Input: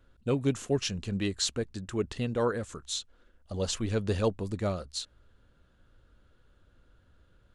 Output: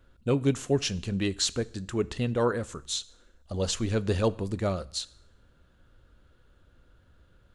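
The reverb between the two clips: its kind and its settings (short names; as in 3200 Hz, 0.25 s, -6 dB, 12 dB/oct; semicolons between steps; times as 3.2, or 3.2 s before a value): two-slope reverb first 0.62 s, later 1.7 s, from -24 dB, DRR 17 dB; gain +2.5 dB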